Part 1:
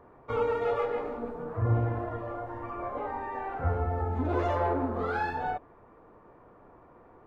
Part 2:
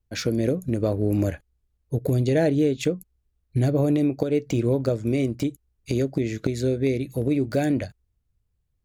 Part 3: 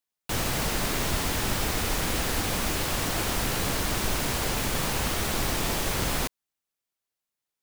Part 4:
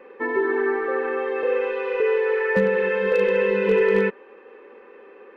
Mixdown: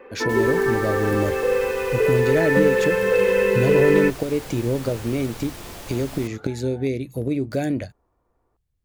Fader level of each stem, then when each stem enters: -17.0 dB, -1.0 dB, -10.5 dB, +1.5 dB; 1.30 s, 0.00 s, 0.00 s, 0.00 s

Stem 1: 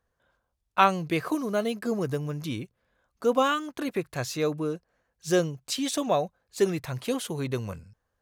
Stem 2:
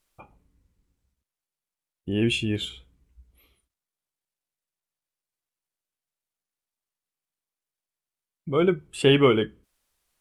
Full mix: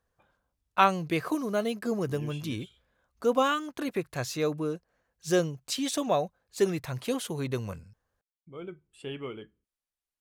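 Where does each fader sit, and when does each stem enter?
-1.5 dB, -20.0 dB; 0.00 s, 0.00 s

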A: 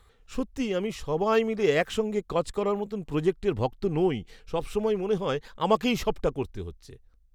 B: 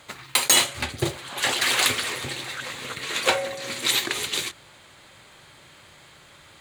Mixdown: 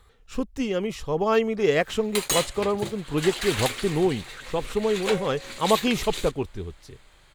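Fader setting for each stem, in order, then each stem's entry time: +2.0 dB, -8.0 dB; 0.00 s, 1.80 s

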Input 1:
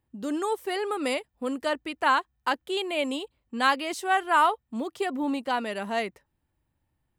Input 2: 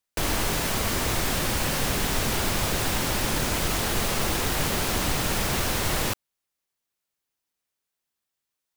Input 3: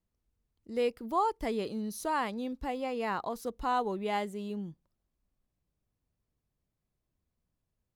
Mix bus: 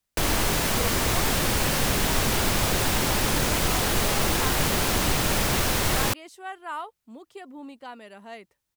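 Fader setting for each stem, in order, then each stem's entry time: -13.0 dB, +2.0 dB, -8.0 dB; 2.35 s, 0.00 s, 0.00 s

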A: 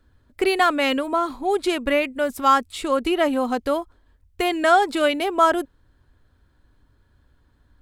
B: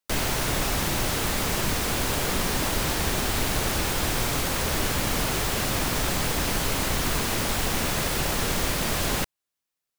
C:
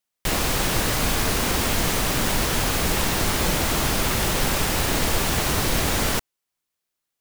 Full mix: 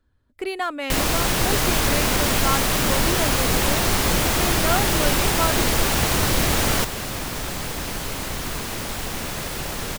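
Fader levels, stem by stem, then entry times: -8.0 dB, -3.0 dB, +1.5 dB; 0.00 s, 1.40 s, 0.65 s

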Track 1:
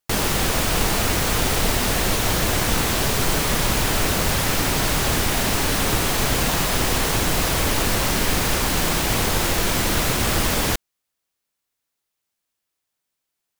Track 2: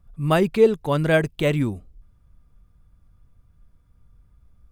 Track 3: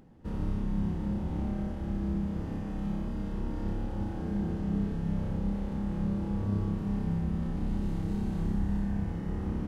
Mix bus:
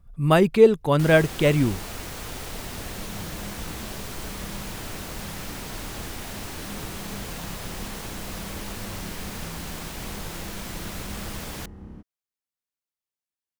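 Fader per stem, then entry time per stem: -15.0 dB, +1.5 dB, -9.5 dB; 0.90 s, 0.00 s, 2.35 s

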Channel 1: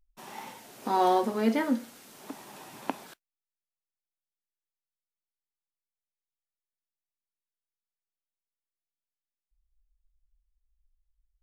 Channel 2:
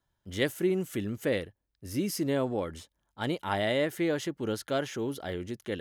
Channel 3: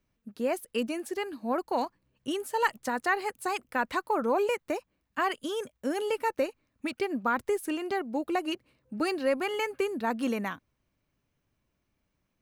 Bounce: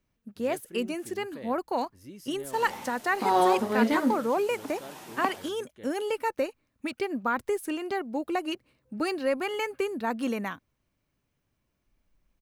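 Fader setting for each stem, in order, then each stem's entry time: +1.5 dB, -15.5 dB, 0.0 dB; 2.35 s, 0.10 s, 0.00 s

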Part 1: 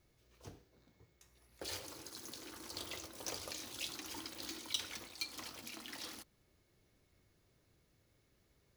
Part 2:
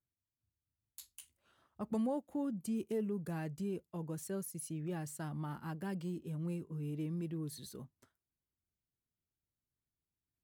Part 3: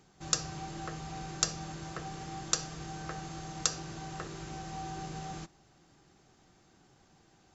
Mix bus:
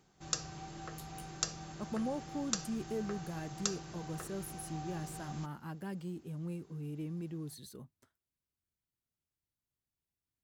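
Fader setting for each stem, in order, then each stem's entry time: mute, -1.5 dB, -5.5 dB; mute, 0.00 s, 0.00 s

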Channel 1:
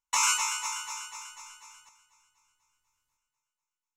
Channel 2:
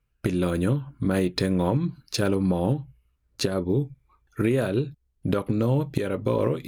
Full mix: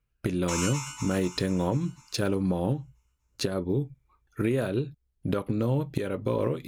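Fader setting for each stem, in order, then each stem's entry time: -7.5 dB, -3.5 dB; 0.35 s, 0.00 s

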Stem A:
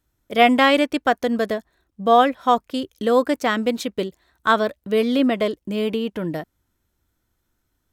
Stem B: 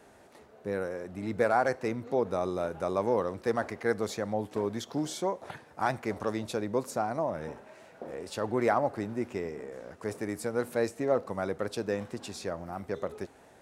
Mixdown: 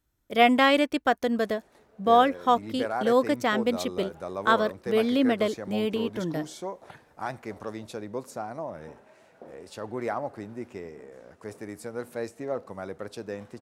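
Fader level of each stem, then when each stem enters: -4.5 dB, -4.5 dB; 0.00 s, 1.40 s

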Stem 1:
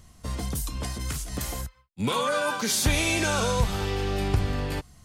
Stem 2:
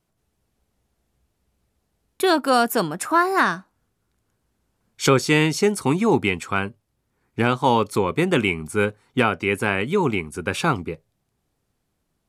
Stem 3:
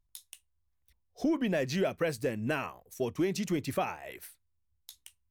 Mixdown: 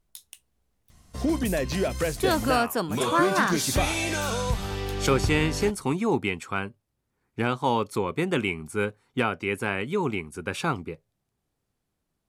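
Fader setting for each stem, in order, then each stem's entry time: -3.0 dB, -6.0 dB, +3.0 dB; 0.90 s, 0.00 s, 0.00 s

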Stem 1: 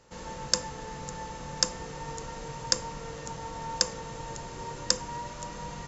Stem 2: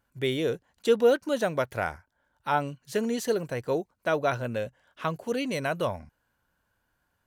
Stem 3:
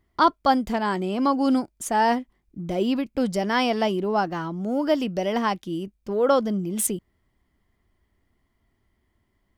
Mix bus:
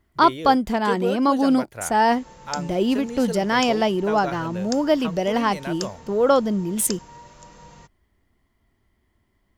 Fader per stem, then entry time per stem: -7.0 dB, -4.5 dB, +2.5 dB; 2.00 s, 0.00 s, 0.00 s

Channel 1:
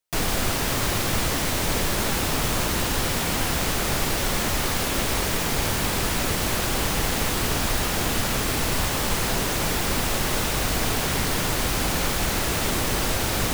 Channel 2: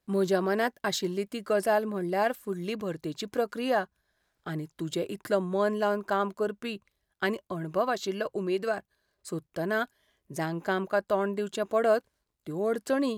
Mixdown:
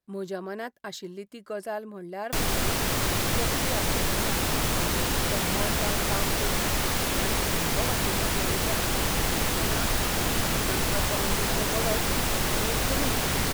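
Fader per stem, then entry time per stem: -2.0 dB, -8.0 dB; 2.20 s, 0.00 s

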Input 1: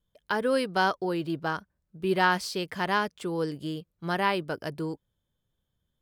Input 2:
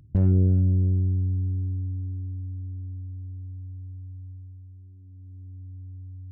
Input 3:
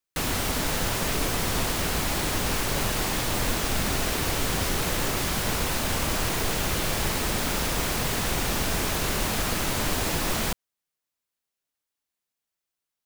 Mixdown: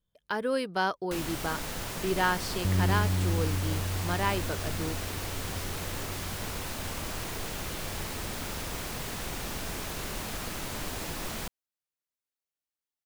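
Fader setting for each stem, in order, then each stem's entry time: -3.5 dB, -7.5 dB, -9.5 dB; 0.00 s, 2.50 s, 0.95 s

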